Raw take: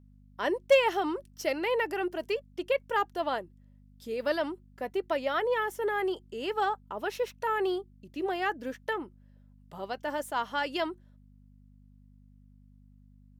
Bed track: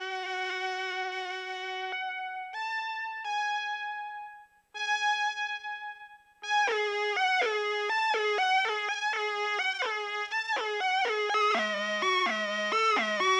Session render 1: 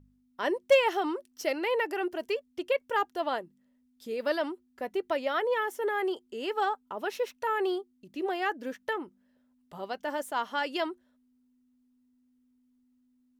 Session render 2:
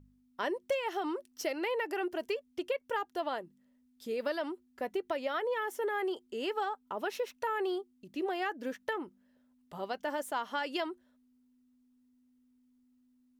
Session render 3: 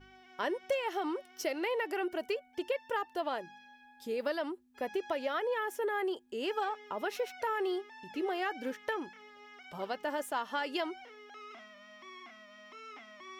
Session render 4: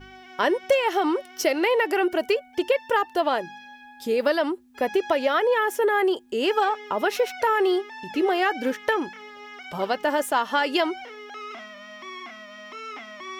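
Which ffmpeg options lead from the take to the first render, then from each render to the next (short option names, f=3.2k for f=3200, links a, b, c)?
-af "bandreject=f=50:t=h:w=4,bandreject=f=100:t=h:w=4,bandreject=f=150:t=h:w=4,bandreject=f=200:t=h:w=4"
-af "acompressor=threshold=-30dB:ratio=6"
-filter_complex "[1:a]volume=-23.5dB[a];[0:a][a]amix=inputs=2:normalize=0"
-af "volume=12dB"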